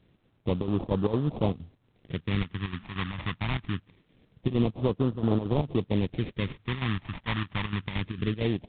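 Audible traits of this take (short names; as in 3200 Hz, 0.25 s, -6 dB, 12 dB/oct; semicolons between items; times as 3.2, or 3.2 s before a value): aliases and images of a low sample rate 1500 Hz, jitter 20%; chopped level 4.4 Hz, depth 65%, duty 70%; phasing stages 2, 0.24 Hz, lowest notch 430–2000 Hz; A-law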